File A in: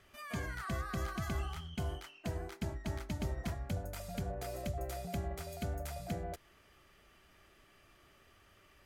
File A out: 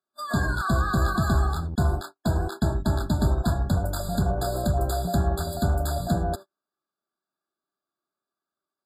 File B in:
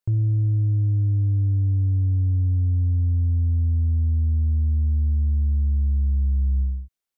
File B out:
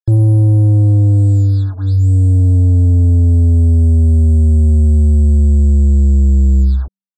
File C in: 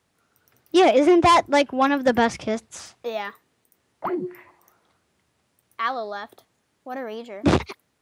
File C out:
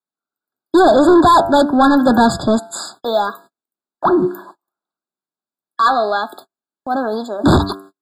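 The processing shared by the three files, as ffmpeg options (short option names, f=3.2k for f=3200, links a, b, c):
-filter_complex "[0:a]apsyclip=11.5dB,bandreject=f=97.14:t=h:w=4,bandreject=f=194.28:t=h:w=4,bandreject=f=291.42:t=h:w=4,bandreject=f=388.56:t=h:w=4,bandreject=f=485.7:t=h:w=4,bandreject=f=582.84:t=h:w=4,bandreject=f=679.98:t=h:w=4,bandreject=f=777.12:t=h:w=4,bandreject=f=874.26:t=h:w=4,bandreject=f=971.4:t=h:w=4,bandreject=f=1.06854k:t=h:w=4,bandreject=f=1.16568k:t=h:w=4,bandreject=f=1.26282k:t=h:w=4,bandreject=f=1.35996k:t=h:w=4,bandreject=f=1.4571k:t=h:w=4,bandreject=f=1.55424k:t=h:w=4,bandreject=f=1.65138k:t=h:w=4,bandreject=f=1.74852k:t=h:w=4,bandreject=f=1.84566k:t=h:w=4,bandreject=f=1.9428k:t=h:w=4,bandreject=f=2.03994k:t=h:w=4,bandreject=f=2.13708k:t=h:w=4,bandreject=f=2.23422k:t=h:w=4,bandreject=f=2.33136k:t=h:w=4,acrossover=split=180[a][b];[a]acrusher=bits=5:mix=0:aa=0.5[c];[b]agate=range=-38dB:threshold=-40dB:ratio=16:detection=peak[d];[c][d]amix=inputs=2:normalize=0,equalizer=f=490:w=5.5:g=-9.5,asoftclip=type=tanh:threshold=-11dB,afftfilt=real='re*eq(mod(floor(b*sr/1024/1700),2),0)':imag='im*eq(mod(floor(b*sr/1024/1700),2),0)':win_size=1024:overlap=0.75,volume=4.5dB"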